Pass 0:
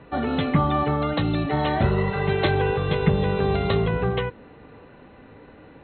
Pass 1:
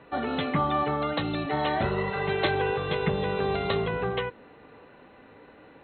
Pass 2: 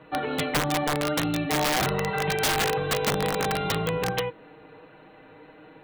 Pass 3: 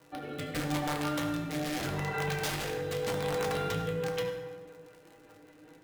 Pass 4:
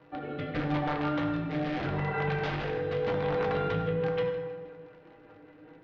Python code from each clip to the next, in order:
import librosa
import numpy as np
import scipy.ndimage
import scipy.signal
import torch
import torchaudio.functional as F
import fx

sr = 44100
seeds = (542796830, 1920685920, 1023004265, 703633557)

y1 = fx.low_shelf(x, sr, hz=210.0, db=-11.5)
y1 = y1 * 10.0 ** (-1.5 / 20.0)
y2 = y1 + 0.74 * np.pad(y1, (int(6.4 * sr / 1000.0), 0))[:len(y1)]
y2 = (np.mod(10.0 ** (17.5 / 20.0) * y2 + 1.0, 2.0) - 1.0) / 10.0 ** (17.5 / 20.0)
y3 = fx.dmg_crackle(y2, sr, seeds[0], per_s=98.0, level_db=-35.0)
y3 = fx.rotary_switch(y3, sr, hz=0.8, then_hz=5.0, switch_at_s=3.73)
y3 = fx.rev_fdn(y3, sr, rt60_s=1.6, lf_ratio=1.0, hf_ratio=0.6, size_ms=59.0, drr_db=1.0)
y3 = y3 * 10.0 ** (-8.5 / 20.0)
y4 = scipy.ndimage.gaussian_filter1d(y3, 2.7, mode='constant')
y4 = fx.echo_feedback(y4, sr, ms=158, feedback_pct=52, wet_db=-18.5)
y4 = y4 * 10.0 ** (3.0 / 20.0)